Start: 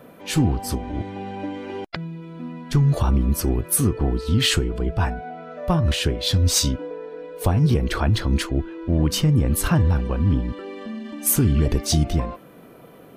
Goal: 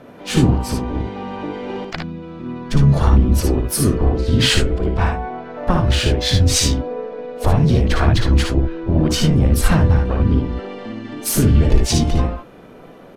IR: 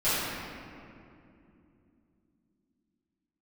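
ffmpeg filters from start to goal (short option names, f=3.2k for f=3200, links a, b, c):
-filter_complex "[0:a]asubboost=boost=3:cutoff=53,asplit=4[a][b][c][d];[b]asetrate=22050,aresample=44100,atempo=2,volume=-12dB[e];[c]asetrate=52444,aresample=44100,atempo=0.840896,volume=-10dB[f];[d]asetrate=66075,aresample=44100,atempo=0.66742,volume=-11dB[g];[a][e][f][g]amix=inputs=4:normalize=0,adynamicsmooth=sensitivity=4.5:basefreq=7.7k,asplit=2[h][i];[i]aecho=0:1:57|73:0.562|0.376[j];[h][j]amix=inputs=2:normalize=0,volume=2.5dB"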